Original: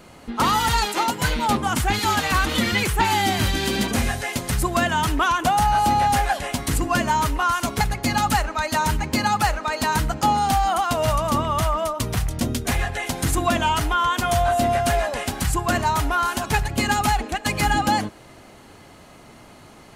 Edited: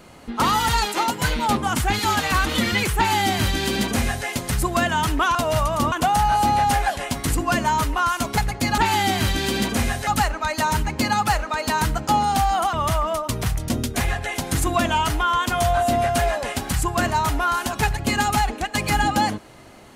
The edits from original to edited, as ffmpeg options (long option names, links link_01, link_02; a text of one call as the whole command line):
ffmpeg -i in.wav -filter_complex "[0:a]asplit=6[link_01][link_02][link_03][link_04][link_05][link_06];[link_01]atrim=end=5.352[link_07];[link_02]atrim=start=10.868:end=11.442[link_08];[link_03]atrim=start=5.348:end=8.212[link_09];[link_04]atrim=start=2.968:end=4.262[link_10];[link_05]atrim=start=8.208:end=10.872[link_11];[link_06]atrim=start=11.438[link_12];[link_07][link_08]acrossfade=duration=0.004:curve1=hsin:curve2=hsin[link_13];[link_13][link_09]acrossfade=duration=0.004:curve1=hsin:curve2=hsin[link_14];[link_14][link_10]acrossfade=duration=0.004:curve1=hsin:curve2=hsin[link_15];[link_15][link_11]acrossfade=duration=0.004:curve1=hsin:curve2=hsin[link_16];[link_16][link_12]acrossfade=duration=0.004:curve1=hsin:curve2=hsin" out.wav